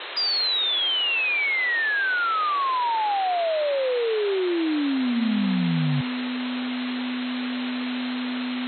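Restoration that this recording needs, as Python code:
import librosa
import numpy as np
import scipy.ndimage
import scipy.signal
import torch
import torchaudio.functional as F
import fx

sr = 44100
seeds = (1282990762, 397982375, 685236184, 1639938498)

y = fx.notch(x, sr, hz=250.0, q=30.0)
y = fx.noise_reduce(y, sr, print_start_s=8.11, print_end_s=8.61, reduce_db=30.0)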